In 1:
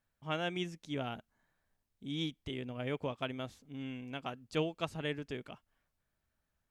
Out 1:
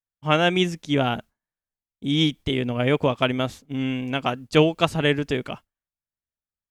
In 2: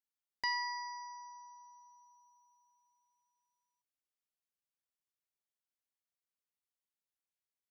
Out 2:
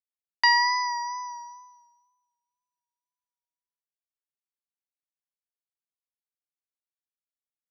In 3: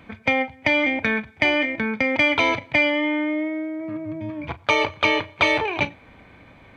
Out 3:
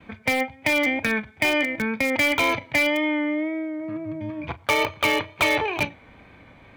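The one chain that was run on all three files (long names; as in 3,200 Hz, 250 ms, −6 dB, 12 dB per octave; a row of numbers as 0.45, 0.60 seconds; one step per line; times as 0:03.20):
downward expander −50 dBFS
in parallel at −10 dB: wrap-around overflow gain 12.5 dB
on the sum: tape wow and flutter 33 cents
loudness normalisation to −23 LKFS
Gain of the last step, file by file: +14.0, +13.0, −3.0 decibels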